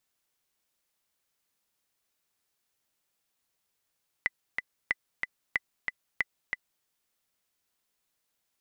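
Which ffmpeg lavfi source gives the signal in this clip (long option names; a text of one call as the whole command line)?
ffmpeg -f lavfi -i "aevalsrc='pow(10,(-12.5-4.5*gte(mod(t,2*60/185),60/185))/20)*sin(2*PI*2000*mod(t,60/185))*exp(-6.91*mod(t,60/185)/0.03)':duration=2.59:sample_rate=44100" out.wav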